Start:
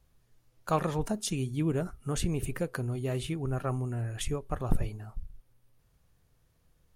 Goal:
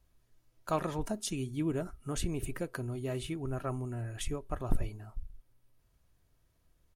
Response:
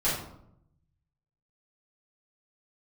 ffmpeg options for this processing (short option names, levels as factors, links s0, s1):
-af "aecho=1:1:3.1:0.3,volume=0.668"